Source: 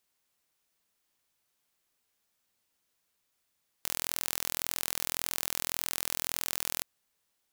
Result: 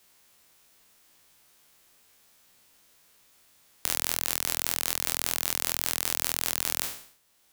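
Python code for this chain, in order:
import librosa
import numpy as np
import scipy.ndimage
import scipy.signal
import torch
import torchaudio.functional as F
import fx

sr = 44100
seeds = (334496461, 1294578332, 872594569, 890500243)

y = fx.spec_trails(x, sr, decay_s=0.5)
y = fx.band_squash(y, sr, depth_pct=40)
y = y * librosa.db_to_amplitude(3.0)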